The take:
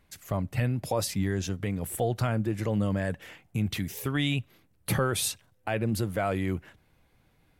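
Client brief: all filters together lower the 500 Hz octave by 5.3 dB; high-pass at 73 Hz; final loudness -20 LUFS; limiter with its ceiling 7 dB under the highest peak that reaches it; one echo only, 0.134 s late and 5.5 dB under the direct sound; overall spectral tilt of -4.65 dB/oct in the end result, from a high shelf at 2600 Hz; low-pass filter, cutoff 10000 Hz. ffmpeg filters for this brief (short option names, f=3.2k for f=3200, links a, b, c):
-af "highpass=73,lowpass=10k,equalizer=f=500:t=o:g=-7,highshelf=f=2.6k:g=4,alimiter=limit=-21dB:level=0:latency=1,aecho=1:1:134:0.531,volume=11.5dB"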